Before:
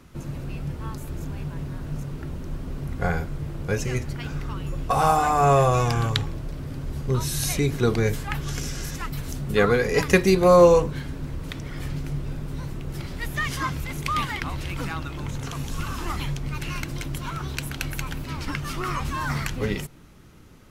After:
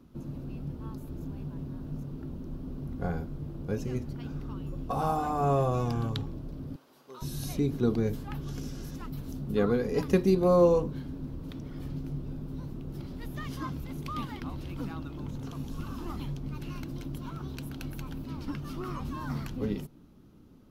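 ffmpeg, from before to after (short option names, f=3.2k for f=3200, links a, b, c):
-filter_complex "[0:a]asettb=1/sr,asplit=3[a][b][c];[a]atrim=end=6.764[d];[b]atrim=start=6.76:end=7.22,asetpts=PTS-STARTPTS,afade=t=in:d=0.004:c=qsin,afade=t=out:st=0.456:d=0.004:c=qsin,highpass=890[e];[c]atrim=start=7.216[f];[d][e]acrossfade=d=0.004:c1=hsin:c2=qsin[g];[g][f]acrossfade=d=0.004:c1=qsin:c2=hsin,equalizer=f=250:t=o:w=1:g=9,equalizer=f=2k:t=o:w=1:g=-10,equalizer=f=8k:t=o:w=1:g=-10,volume=-9dB"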